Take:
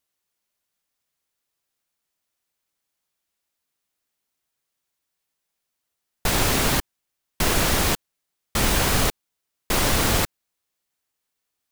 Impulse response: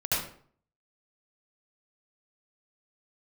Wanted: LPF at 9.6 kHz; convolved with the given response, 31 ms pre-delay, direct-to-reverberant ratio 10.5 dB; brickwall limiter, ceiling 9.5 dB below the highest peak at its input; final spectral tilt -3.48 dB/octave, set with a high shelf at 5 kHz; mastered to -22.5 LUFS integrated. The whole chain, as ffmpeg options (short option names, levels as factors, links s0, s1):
-filter_complex "[0:a]lowpass=9600,highshelf=f=5000:g=-3,alimiter=limit=0.126:level=0:latency=1,asplit=2[s0][s1];[1:a]atrim=start_sample=2205,adelay=31[s2];[s1][s2]afir=irnorm=-1:irlink=0,volume=0.1[s3];[s0][s3]amix=inputs=2:normalize=0,volume=2.11"